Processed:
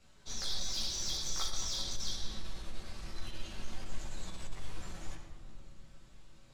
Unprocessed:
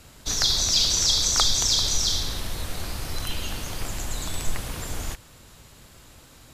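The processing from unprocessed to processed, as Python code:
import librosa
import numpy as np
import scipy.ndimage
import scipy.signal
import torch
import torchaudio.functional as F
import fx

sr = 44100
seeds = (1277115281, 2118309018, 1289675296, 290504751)

p1 = scipy.signal.sosfilt(scipy.signal.butter(2, 7200.0, 'lowpass', fs=sr, output='sos'), x)
p2 = fx.comb_fb(p1, sr, f0_hz=110.0, decay_s=0.75, harmonics='all', damping=0.0, mix_pct=70)
p3 = fx.chorus_voices(p2, sr, voices=6, hz=0.4, base_ms=17, depth_ms=5.0, mix_pct=50)
p4 = 10.0 ** (-27.0 / 20.0) * np.tanh(p3 / 10.0 ** (-27.0 / 20.0))
p5 = p4 + fx.echo_filtered(p4, sr, ms=118, feedback_pct=83, hz=1200.0, wet_db=-11, dry=0)
p6 = fx.room_shoebox(p5, sr, seeds[0], volume_m3=2600.0, walls='mixed', distance_m=1.1)
y = p6 * 10.0 ** (-3.0 / 20.0)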